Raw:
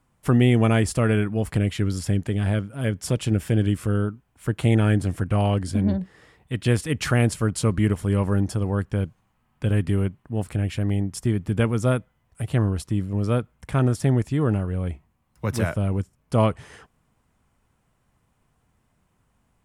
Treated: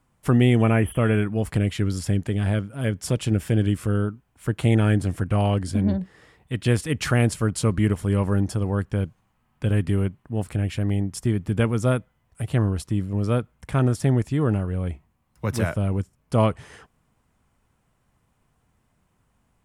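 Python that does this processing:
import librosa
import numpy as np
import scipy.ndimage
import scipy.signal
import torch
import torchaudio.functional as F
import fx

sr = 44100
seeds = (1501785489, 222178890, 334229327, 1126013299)

y = fx.spec_repair(x, sr, seeds[0], start_s=0.62, length_s=0.54, low_hz=2800.0, high_hz=9900.0, source='both')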